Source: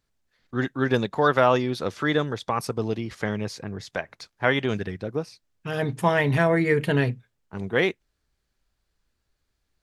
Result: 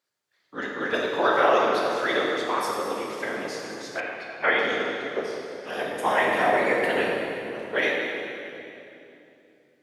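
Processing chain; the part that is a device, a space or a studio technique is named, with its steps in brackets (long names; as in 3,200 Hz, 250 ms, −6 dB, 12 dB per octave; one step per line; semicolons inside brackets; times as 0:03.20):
whispering ghost (random phases in short frames; high-pass filter 450 Hz 12 dB per octave; convolution reverb RT60 2.9 s, pre-delay 12 ms, DRR −2 dB)
0:04.00–0:04.59: high shelf with overshoot 3,900 Hz −11.5 dB, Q 1.5
level −2 dB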